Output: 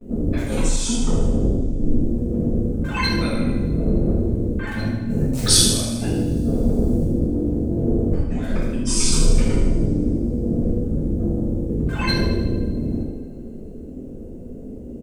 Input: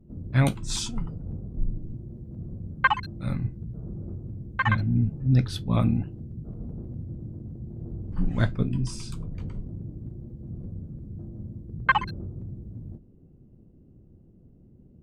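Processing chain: gate with hold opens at -50 dBFS; in parallel at -10.5 dB: integer overflow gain 11.5 dB; on the sum: graphic EQ 125/250/500/1000/2000/8000 Hz -11/+4/+9/-3/+3/+9 dB; compressor with a negative ratio -33 dBFS, ratio -1; 4.97–7.04 s: tone controls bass +1 dB, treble +13 dB; on a send: feedback delay 78 ms, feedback 60%, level -9.5 dB; on the sum: two-slope reverb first 0.73 s, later 3 s, from -27 dB, DRR -10 dB; trim +1 dB

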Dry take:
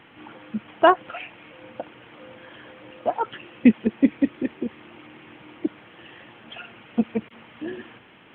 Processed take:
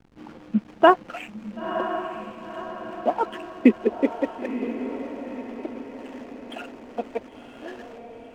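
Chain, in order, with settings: high-pass sweep 190 Hz -> 630 Hz, 2.84–4.50 s; hysteresis with a dead band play -38 dBFS; echo that smears into a reverb 992 ms, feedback 50%, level -9 dB

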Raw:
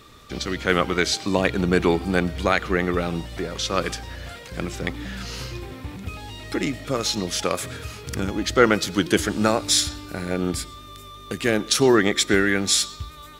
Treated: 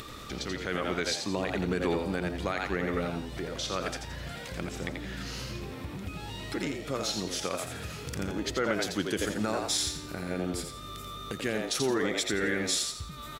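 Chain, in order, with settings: upward compressor, threshold -24 dBFS; frequency-shifting echo 85 ms, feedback 33%, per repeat +82 Hz, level -6 dB; peak limiter -9.5 dBFS, peak gain reduction 7.5 dB; trim -8.5 dB

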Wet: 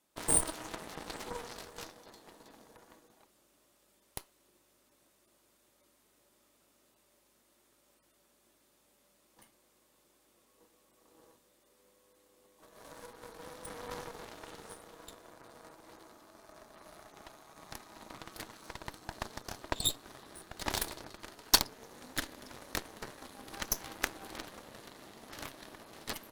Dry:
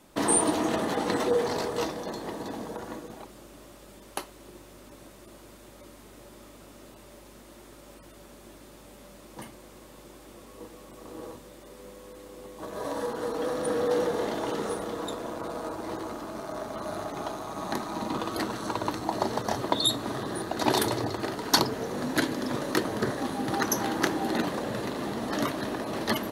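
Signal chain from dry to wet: tilt EQ +2 dB/octave; Chebyshev shaper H 3 -12 dB, 7 -34 dB, 8 -25 dB, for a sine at -3.5 dBFS; trim -1 dB

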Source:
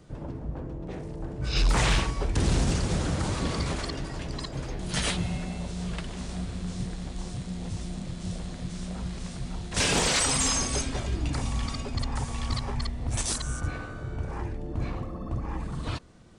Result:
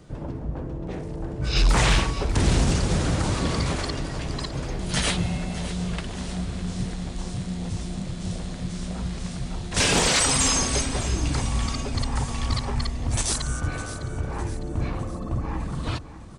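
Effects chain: feedback delay 606 ms, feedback 48%, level -14 dB; trim +4 dB

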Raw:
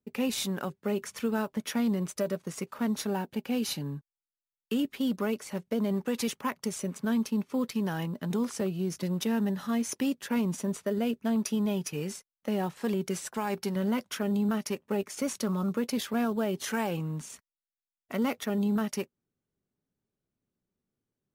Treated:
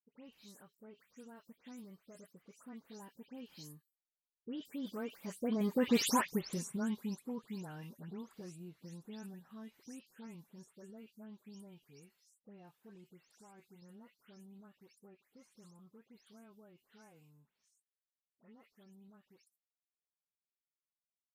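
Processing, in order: delay that grows with frequency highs late, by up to 198 ms; Doppler pass-by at 6.03 s, 18 m/s, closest 3.7 m; trim +3 dB

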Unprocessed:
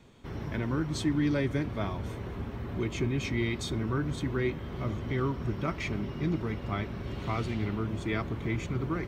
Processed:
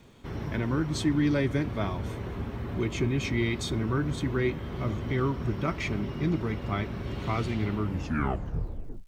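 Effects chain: tape stop on the ending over 1.32 s; crackle 370 per s -60 dBFS; trim +2.5 dB

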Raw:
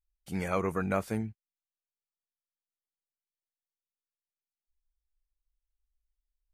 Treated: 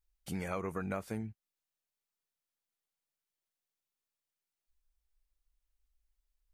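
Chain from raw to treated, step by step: compression 3:1, threshold -41 dBFS, peak gain reduction 13 dB; trim +3.5 dB

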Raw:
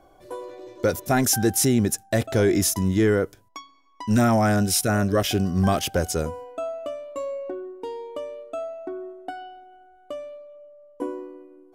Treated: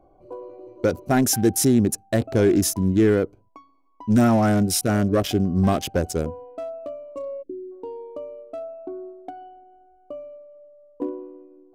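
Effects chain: local Wiener filter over 25 samples; spectral selection erased 7.42–7.71 s, 520–7700 Hz; dynamic bell 280 Hz, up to +4 dB, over -31 dBFS, Q 1.2

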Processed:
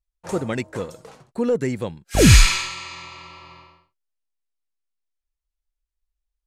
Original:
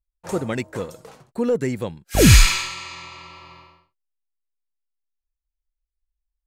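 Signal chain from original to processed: low-pass 11 kHz 12 dB/octave

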